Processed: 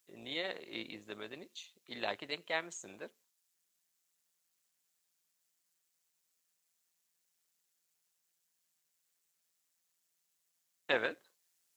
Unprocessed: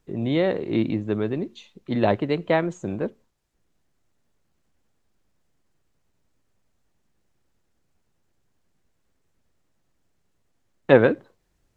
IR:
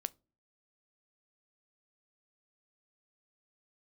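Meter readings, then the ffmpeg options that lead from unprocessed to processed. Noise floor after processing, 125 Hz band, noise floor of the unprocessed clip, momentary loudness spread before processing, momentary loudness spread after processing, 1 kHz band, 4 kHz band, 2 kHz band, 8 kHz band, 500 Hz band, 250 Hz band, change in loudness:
-81 dBFS, -31.0 dB, -71 dBFS, 14 LU, 17 LU, -14.5 dB, -3.0 dB, -8.5 dB, no reading, -19.5 dB, -25.0 dB, -16.0 dB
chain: -af "tremolo=f=170:d=0.519,aderivative,volume=1.88"

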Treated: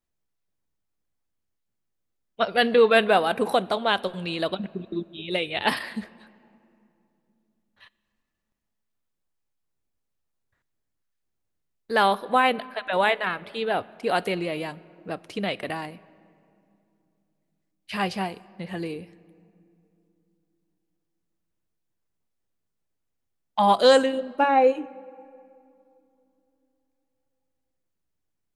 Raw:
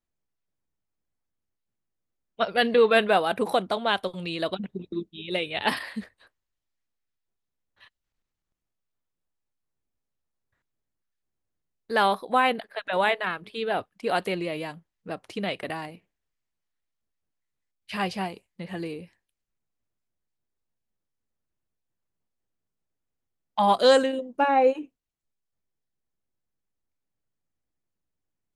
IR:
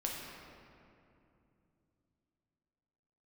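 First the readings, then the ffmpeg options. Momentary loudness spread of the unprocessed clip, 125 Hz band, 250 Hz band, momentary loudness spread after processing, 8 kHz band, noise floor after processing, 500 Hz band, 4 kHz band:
17 LU, +2.0 dB, +1.5 dB, 17 LU, +1.5 dB, -79 dBFS, +1.5 dB, +1.5 dB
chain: -filter_complex "[0:a]asplit=2[s0][s1];[1:a]atrim=start_sample=2205[s2];[s1][s2]afir=irnorm=-1:irlink=0,volume=0.1[s3];[s0][s3]amix=inputs=2:normalize=0,volume=1.12"

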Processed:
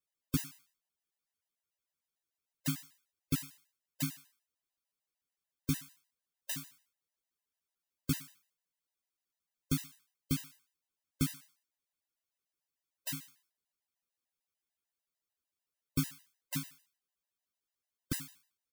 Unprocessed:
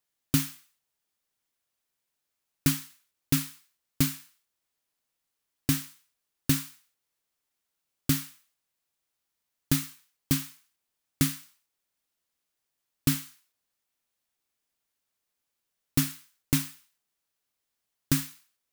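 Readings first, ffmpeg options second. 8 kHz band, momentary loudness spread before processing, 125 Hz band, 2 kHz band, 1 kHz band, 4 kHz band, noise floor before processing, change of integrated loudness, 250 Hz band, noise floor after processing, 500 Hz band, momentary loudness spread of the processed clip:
-10.0 dB, 15 LU, -8.5 dB, -9.5 dB, -9.5 dB, -10.0 dB, -83 dBFS, -9.0 dB, -8.5 dB, under -85 dBFS, -8.5 dB, 15 LU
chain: -filter_complex "[0:a]asplit=2[s0][s1];[s1]adelay=12,volume=0.668[s2];[s0][s2]amix=inputs=2:normalize=0,afftfilt=real='re*gt(sin(2*PI*6.7*pts/sr)*(1-2*mod(floor(b*sr/1024/520),2)),0)':imag='im*gt(sin(2*PI*6.7*pts/sr)*(1-2*mod(floor(b*sr/1024/520),2)),0)':win_size=1024:overlap=0.75,volume=0.398"

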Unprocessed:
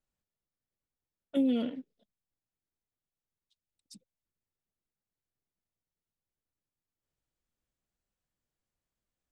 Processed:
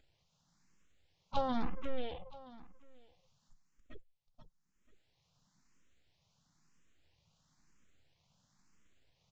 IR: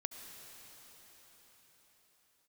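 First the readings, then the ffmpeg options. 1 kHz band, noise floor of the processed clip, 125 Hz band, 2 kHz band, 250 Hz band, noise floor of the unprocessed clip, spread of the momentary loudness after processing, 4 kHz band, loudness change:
+15.0 dB, -78 dBFS, no reading, +3.5 dB, -11.0 dB, under -85 dBFS, 19 LU, -1.0 dB, -8.5 dB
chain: -filter_complex "[0:a]aeval=exprs='abs(val(0))':c=same,equalizer=f=890:w=0.45:g=-4,afftdn=nr=27:nf=-59,acompressor=mode=upward:threshold=0.01:ratio=2.5,equalizer=f=160:t=o:w=0.67:g=7,equalizer=f=400:t=o:w=0.67:g=-4,equalizer=f=1000:t=o:w=0.67:g=4,aecho=1:1:486|972|1458:0.447|0.107|0.0257,aresample=16000,aresample=44100,asplit=2[s0][s1];[s1]afreqshift=1[s2];[s0][s2]amix=inputs=2:normalize=1,volume=1.78"

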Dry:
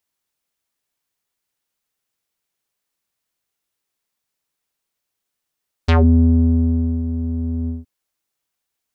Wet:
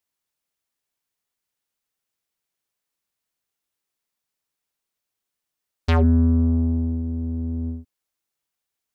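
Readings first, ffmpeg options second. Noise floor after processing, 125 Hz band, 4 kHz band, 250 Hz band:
-84 dBFS, -4.0 dB, -4.0 dB, -4.0 dB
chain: -af "aeval=exprs='0.501*(cos(1*acos(clip(val(0)/0.501,-1,1)))-cos(1*PI/2))+0.01*(cos(8*acos(clip(val(0)/0.501,-1,1)))-cos(8*PI/2))':c=same,volume=0.631"

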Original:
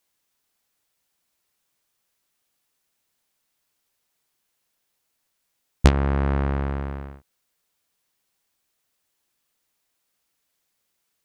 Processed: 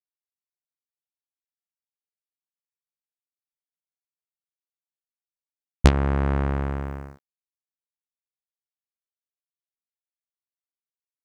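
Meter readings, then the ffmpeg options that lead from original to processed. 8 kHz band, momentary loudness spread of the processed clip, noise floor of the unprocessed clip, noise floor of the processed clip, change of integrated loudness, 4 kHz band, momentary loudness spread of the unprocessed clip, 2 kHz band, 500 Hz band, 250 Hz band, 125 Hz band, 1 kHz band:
0.0 dB, 14 LU, -76 dBFS, under -85 dBFS, 0.0 dB, 0.0 dB, 16 LU, 0.0 dB, 0.0 dB, -0.5 dB, -0.5 dB, 0.0 dB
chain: -af "aeval=exprs='sgn(val(0))*max(abs(val(0))-0.00501,0)':c=same"

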